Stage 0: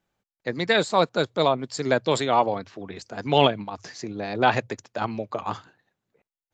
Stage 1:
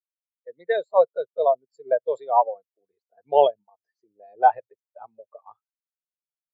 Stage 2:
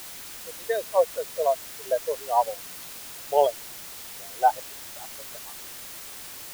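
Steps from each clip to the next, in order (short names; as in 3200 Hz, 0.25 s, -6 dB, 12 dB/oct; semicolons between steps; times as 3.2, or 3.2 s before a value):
resonant low shelf 370 Hz -7 dB, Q 1.5; spectral expander 2.5:1
added noise white -37 dBFS; gain -3.5 dB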